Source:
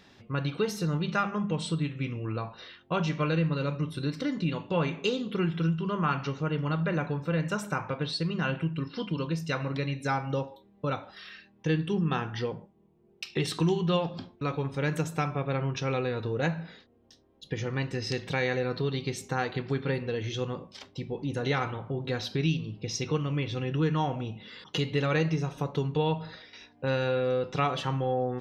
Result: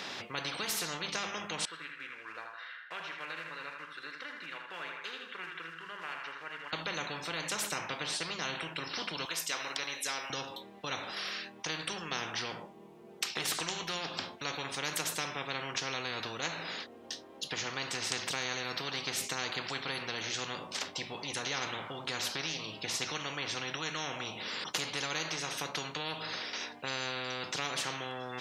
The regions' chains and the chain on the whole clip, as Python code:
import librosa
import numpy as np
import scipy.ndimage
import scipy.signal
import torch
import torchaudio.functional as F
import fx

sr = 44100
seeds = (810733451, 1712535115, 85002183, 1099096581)

y = fx.chain(x, sr, fx.block_float(bits=5),
    fx.bandpass_q(hz=1600.0, q=11.0),
    fx.echo_feedback(ms=80, feedback_pct=44, wet_db=-8.0), at=(1.65, 6.73))
y = fx.chain(y, sr, fx.highpass(hz=940.0, slope=12),
    fx.high_shelf(hz=6800.0, db=8.0),
    fx.notch(hz=4400.0, q=7.0), at=(9.25, 10.3))
y = fx.weighting(y, sr, curve='A')
y = fx.spectral_comp(y, sr, ratio=4.0)